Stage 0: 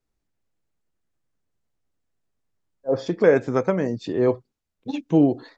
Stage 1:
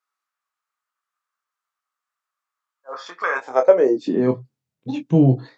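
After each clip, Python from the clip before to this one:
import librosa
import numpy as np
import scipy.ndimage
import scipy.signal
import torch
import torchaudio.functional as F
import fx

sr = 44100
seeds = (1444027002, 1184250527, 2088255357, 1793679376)

y = fx.doubler(x, sr, ms=23.0, db=-5)
y = fx.filter_sweep_highpass(y, sr, from_hz=1200.0, to_hz=130.0, start_s=3.29, end_s=4.42, q=6.0)
y = y * librosa.db_to_amplitude(-1.5)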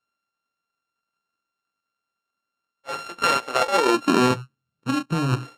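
y = np.r_[np.sort(x[:len(x) // 32 * 32].reshape(-1, 32), axis=1).ravel(), x[len(x) // 32 * 32:]]
y = fx.air_absorb(y, sr, metres=55.0)
y = fx.over_compress(y, sr, threshold_db=-19.0, ratio=-1.0)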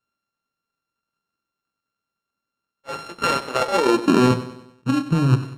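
y = fx.low_shelf(x, sr, hz=340.0, db=9.0)
y = fx.notch(y, sr, hz=720.0, q=16.0)
y = fx.echo_feedback(y, sr, ms=96, feedback_pct=48, wet_db=-14)
y = y * librosa.db_to_amplitude(-1.5)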